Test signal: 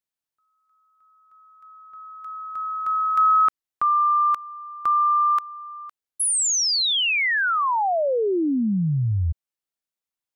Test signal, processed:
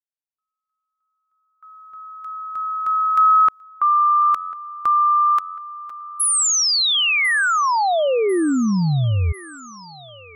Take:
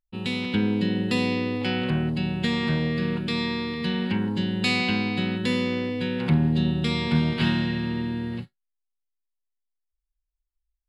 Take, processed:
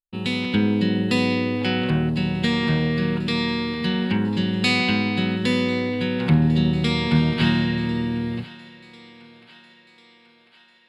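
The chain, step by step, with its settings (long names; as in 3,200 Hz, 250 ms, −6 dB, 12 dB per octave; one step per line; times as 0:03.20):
noise gate with hold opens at −46 dBFS, hold 71 ms, range −20 dB
feedback echo with a high-pass in the loop 1,046 ms, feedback 59%, high-pass 460 Hz, level −18 dB
level +3.5 dB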